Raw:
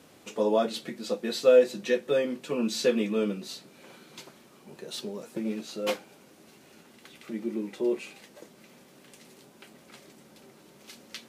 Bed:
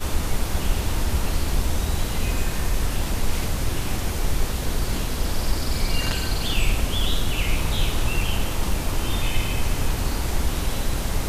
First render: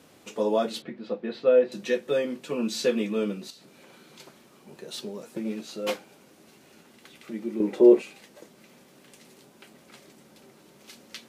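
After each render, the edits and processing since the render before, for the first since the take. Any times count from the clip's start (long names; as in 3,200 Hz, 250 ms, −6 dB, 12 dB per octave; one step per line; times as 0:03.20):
0:00.82–0:01.72: high-frequency loss of the air 360 metres
0:03.50–0:04.20: downward compressor, threshold −47 dBFS
0:07.60–0:08.02: parametric band 460 Hz +13 dB 2.7 octaves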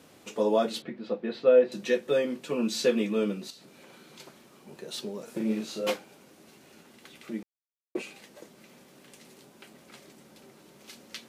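0:05.24–0:05.87: double-tracking delay 37 ms −2.5 dB
0:07.43–0:07.95: silence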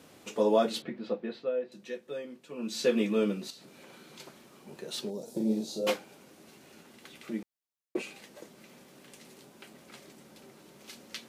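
0:01.04–0:03.01: duck −13 dB, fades 0.48 s
0:05.10–0:05.87: flat-topped bell 1,800 Hz −15 dB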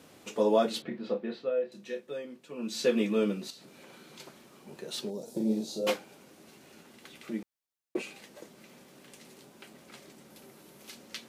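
0:00.88–0:02.06: double-tracking delay 30 ms −7 dB
0:10.30–0:10.90: parametric band 12,000 Hz +7.5 dB 0.6 octaves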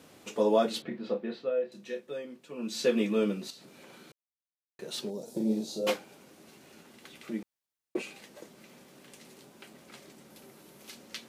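0:04.12–0:04.79: silence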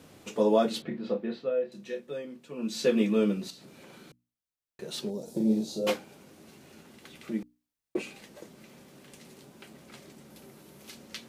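low-shelf EQ 170 Hz +10.5 dB
mains-hum notches 60/120/180/240/300 Hz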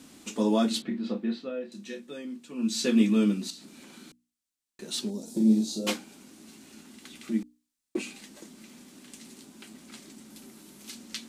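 octave-band graphic EQ 125/250/500/4,000/8,000 Hz −12/+11/−9/+3/+8 dB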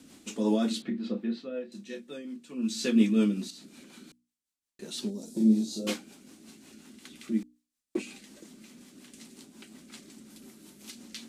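rotating-speaker cabinet horn 5.5 Hz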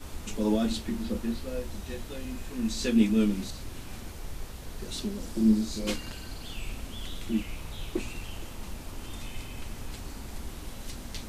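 mix in bed −16 dB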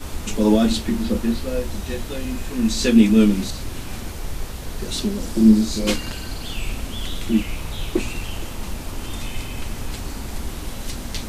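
level +10 dB
brickwall limiter −3 dBFS, peak gain reduction 2.5 dB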